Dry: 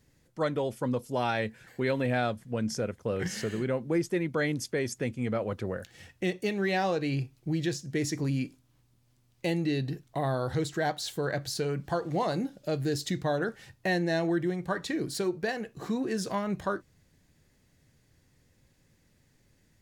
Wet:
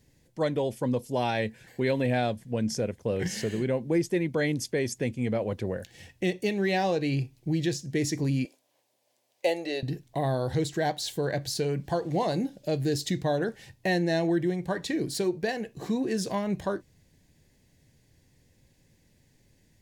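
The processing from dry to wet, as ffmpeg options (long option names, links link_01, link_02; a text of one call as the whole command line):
ffmpeg -i in.wav -filter_complex "[0:a]asettb=1/sr,asplit=3[link_01][link_02][link_03];[link_01]atrim=end=8.454[link_04];[link_02]atrim=start=8.45:end=9.83,asetpts=PTS-STARTPTS,afade=type=in:duration=0.004:curve=qsin,afade=type=out:start_time=1.376:duration=0.004:curve=qsin,highpass=frequency=590:width_type=q:width=2.8[link_05];[link_03]atrim=start=9.826[link_06];[link_04][link_05]acrossfade=duration=0.004:curve1=hsin:curve2=qsin[link_07];[link_07][link_06]acrossfade=duration=0.004:curve1=qsin:curve2=hsin,equalizer=frequency=1300:width=3.4:gain=-12,volume=2.5dB" out.wav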